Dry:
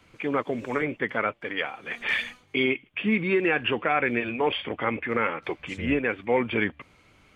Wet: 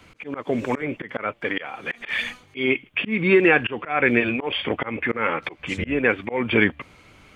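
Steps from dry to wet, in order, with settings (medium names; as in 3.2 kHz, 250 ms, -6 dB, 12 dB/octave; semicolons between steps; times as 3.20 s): slow attack 218 ms; trim +7.5 dB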